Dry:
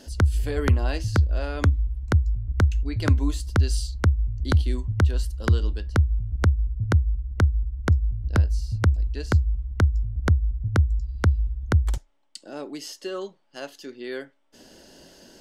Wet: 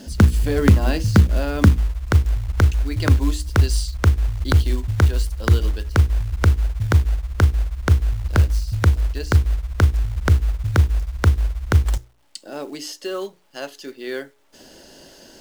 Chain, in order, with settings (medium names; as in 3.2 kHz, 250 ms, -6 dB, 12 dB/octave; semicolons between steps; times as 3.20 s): peaking EQ 200 Hz +11 dB 0.98 oct, from 1.78 s -2.5 dB; hum notches 60/120/180/240/300/360/420/480 Hz; companded quantiser 6-bit; trim +5 dB